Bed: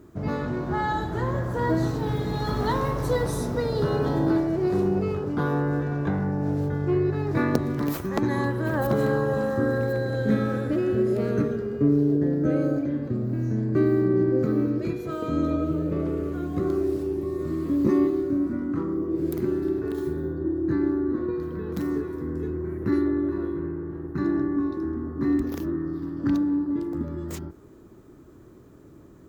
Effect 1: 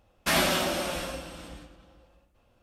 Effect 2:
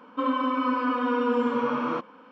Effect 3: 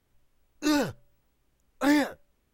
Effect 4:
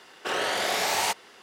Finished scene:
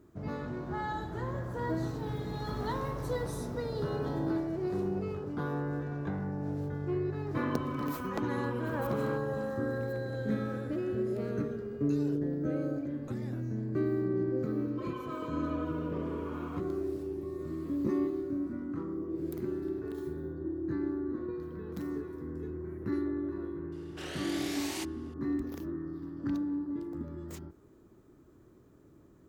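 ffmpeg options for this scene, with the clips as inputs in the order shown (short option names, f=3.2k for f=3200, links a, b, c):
-filter_complex "[2:a]asplit=2[a][b];[0:a]volume=-9.5dB[c];[3:a]acompressor=threshold=-42dB:ratio=6:attack=3.2:release=140:knee=1:detection=peak[d];[b]alimiter=limit=-19dB:level=0:latency=1:release=71[e];[4:a]equalizer=f=950:t=o:w=1.5:g=-8.5[f];[a]atrim=end=2.31,asetpts=PTS-STARTPTS,volume=-14dB,afade=t=in:d=0.004:c=hsin,afade=t=out:st=2.306:d=0.004:c=hsin,adelay=7170[g];[d]atrim=end=2.53,asetpts=PTS-STARTPTS,volume=-5.5dB,afade=t=in:d=0.004:c=hsin,afade=t=out:st=2.526:d=0.004:c=hsin,adelay=11270[h];[e]atrim=end=2.31,asetpts=PTS-STARTPTS,volume=-15.5dB,afade=t=in:d=0.004:c=hsin,afade=t=out:st=2.306:d=0.004:c=hsin,adelay=643860S[i];[f]atrim=end=1.42,asetpts=PTS-STARTPTS,volume=-11.5dB,afade=t=in:d=0.004:c=hsin,afade=t=out:st=1.416:d=0.004:c=hsin,adelay=1046052S[j];[c][g][h][i][j]amix=inputs=5:normalize=0"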